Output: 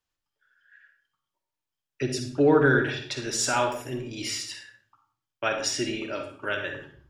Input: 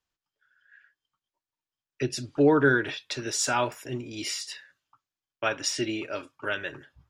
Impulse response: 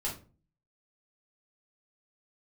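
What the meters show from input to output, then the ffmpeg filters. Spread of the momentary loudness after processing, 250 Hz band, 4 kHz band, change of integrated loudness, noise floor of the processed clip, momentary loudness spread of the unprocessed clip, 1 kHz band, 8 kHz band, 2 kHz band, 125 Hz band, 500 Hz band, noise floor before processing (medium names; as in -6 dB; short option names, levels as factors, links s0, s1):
14 LU, +0.5 dB, +1.0 dB, +1.0 dB, under -85 dBFS, 15 LU, +1.5 dB, +1.0 dB, +1.0 dB, +2.5 dB, +1.5 dB, under -85 dBFS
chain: -filter_complex "[0:a]asplit=2[s0][s1];[1:a]atrim=start_sample=2205,asetrate=27783,aresample=44100,adelay=44[s2];[s1][s2]afir=irnorm=-1:irlink=0,volume=0.266[s3];[s0][s3]amix=inputs=2:normalize=0"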